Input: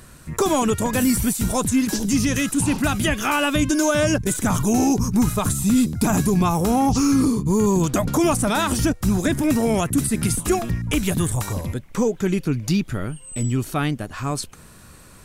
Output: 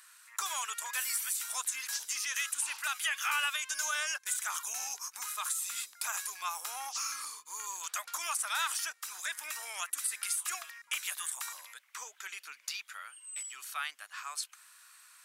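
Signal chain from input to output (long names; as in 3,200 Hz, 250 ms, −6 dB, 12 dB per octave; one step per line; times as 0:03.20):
high-pass filter 1,200 Hz 24 dB per octave
level −7 dB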